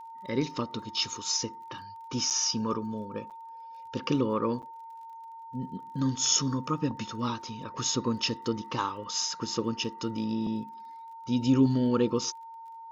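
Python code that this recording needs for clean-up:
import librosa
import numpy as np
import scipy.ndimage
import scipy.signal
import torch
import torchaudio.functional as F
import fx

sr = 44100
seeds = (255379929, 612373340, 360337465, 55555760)

y = fx.fix_declick_ar(x, sr, threshold=6.5)
y = fx.notch(y, sr, hz=910.0, q=30.0)
y = fx.fix_interpolate(y, sr, at_s=(2.3, 3.3, 4.62), length_ms=7.3)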